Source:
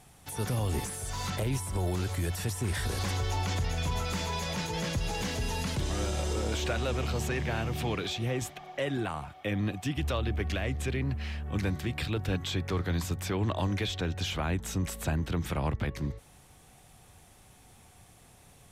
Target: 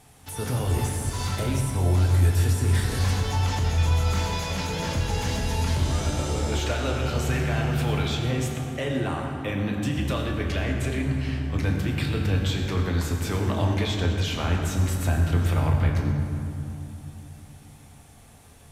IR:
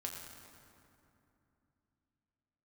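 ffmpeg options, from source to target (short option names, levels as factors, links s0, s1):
-filter_complex "[1:a]atrim=start_sample=2205[s0];[0:a][s0]afir=irnorm=-1:irlink=0,volume=1.88"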